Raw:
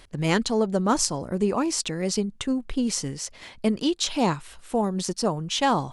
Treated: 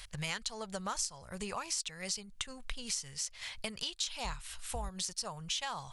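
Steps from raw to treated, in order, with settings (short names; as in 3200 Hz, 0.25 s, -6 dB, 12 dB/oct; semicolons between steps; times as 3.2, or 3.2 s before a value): 4.24–4.89 octaver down 2 oct, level -2 dB; passive tone stack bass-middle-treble 10-0-10; compressor 4:1, threshold -43 dBFS, peak gain reduction 18.5 dB; gain +6.5 dB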